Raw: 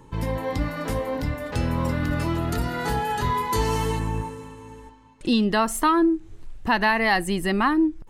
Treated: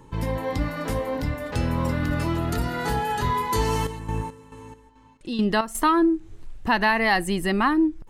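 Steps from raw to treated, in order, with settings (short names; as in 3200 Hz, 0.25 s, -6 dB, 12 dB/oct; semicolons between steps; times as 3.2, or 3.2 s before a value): 3.65–5.75 chopper 2.3 Hz, depth 65%, duty 50%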